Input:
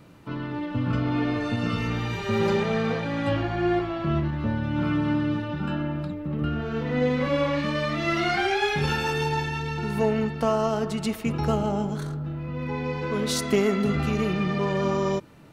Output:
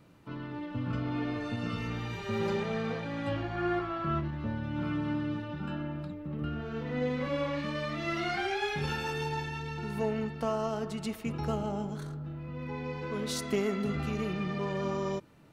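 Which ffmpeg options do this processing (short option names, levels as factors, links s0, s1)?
-filter_complex "[0:a]asettb=1/sr,asplit=3[s0][s1][s2];[s0]atrim=end=3.554[s3];[s1]atrim=start=3.55:end=4.21,asetpts=PTS-STARTPTS,afade=t=in:d=0.004:c=qsin,afade=t=out:st=0.656:d=0.004:c=qsin,equalizer=f=1300:t=o:w=0.62:g=10[s4];[s2]atrim=start=4.206[s5];[s3][s4]acrossfade=d=0.004:c1=hsin:c2=qsin[s6];[s6][s5]acrossfade=d=0.004:c1=qsin:c2=hsin,volume=0.398"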